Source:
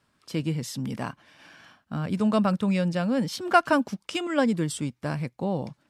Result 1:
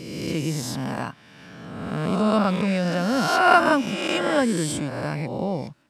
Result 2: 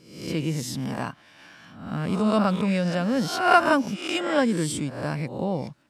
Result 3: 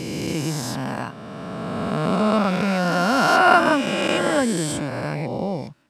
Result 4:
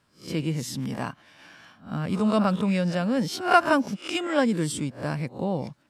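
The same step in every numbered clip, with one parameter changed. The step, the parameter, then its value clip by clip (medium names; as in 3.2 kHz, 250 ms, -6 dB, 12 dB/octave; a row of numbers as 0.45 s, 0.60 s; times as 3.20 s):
reverse spectral sustain, rising 60 dB in: 1.52 s, 0.67 s, 3.18 s, 0.32 s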